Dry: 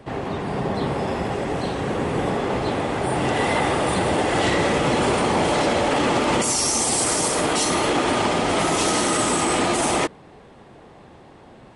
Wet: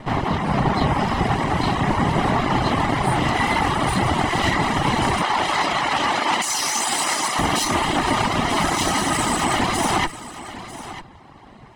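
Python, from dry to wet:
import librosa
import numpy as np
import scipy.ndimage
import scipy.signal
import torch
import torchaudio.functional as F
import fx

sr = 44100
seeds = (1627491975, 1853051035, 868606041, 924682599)

y = fx.lower_of_two(x, sr, delay_ms=1.0)
y = fx.weighting(y, sr, curve='A', at=(5.22, 7.39))
y = fx.dereverb_blind(y, sr, rt60_s=0.82)
y = fx.high_shelf(y, sr, hz=6800.0, db=-8.0)
y = fx.rider(y, sr, range_db=3, speed_s=0.5)
y = y + 10.0 ** (-14.5 / 20.0) * np.pad(y, (int(946 * sr / 1000.0), 0))[:len(y)]
y = y * librosa.db_to_amplitude(6.0)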